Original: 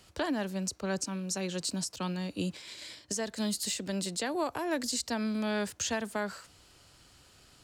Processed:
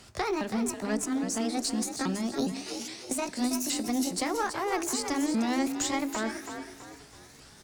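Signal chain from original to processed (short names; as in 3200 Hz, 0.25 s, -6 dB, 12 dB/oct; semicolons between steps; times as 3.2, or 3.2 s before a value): repeated pitch sweeps +7 st, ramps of 0.411 s; notches 50/100/150/200/250 Hz; in parallel at -1 dB: compressor, threshold -42 dBFS, peak gain reduction 13 dB; on the sum: tube stage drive 22 dB, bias 0.35; thirty-one-band EQ 250 Hz +5 dB, 500 Hz -3 dB, 3150 Hz -4 dB, 12500 Hz -9 dB; frequency-shifting echo 0.327 s, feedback 38%, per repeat +46 Hz, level -8.5 dB; on a send at -19.5 dB: reverb RT60 2.8 s, pre-delay 4 ms; on the sum: gain +3 dB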